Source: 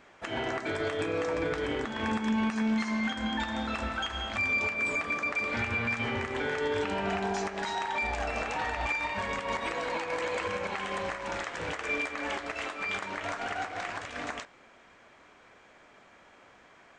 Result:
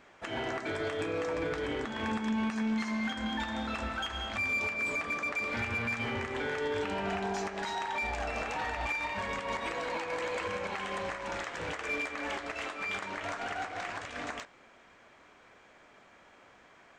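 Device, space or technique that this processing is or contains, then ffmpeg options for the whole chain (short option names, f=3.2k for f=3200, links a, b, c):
parallel distortion: -filter_complex "[0:a]asplit=2[a][b];[b]asoftclip=type=hard:threshold=-33dB,volume=-7.5dB[c];[a][c]amix=inputs=2:normalize=0,volume=-4.5dB"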